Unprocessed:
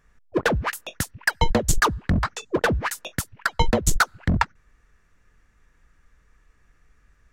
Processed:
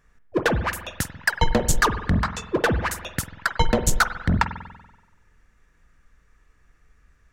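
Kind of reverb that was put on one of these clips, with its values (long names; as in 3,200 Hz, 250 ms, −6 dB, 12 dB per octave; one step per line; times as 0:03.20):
spring reverb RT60 1.1 s, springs 47 ms, chirp 80 ms, DRR 10 dB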